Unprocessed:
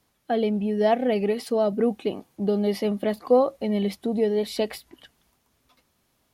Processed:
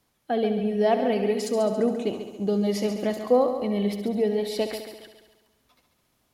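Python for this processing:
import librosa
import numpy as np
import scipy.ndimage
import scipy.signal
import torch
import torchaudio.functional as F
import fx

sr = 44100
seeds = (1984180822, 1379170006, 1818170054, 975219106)

y = fx.peak_eq(x, sr, hz=6800.0, db=14.0, octaves=0.47, at=(1.39, 3.23))
y = fx.echo_heads(y, sr, ms=69, heads='first and second', feedback_pct=54, wet_db=-11.5)
y = F.gain(torch.from_numpy(y), -1.5).numpy()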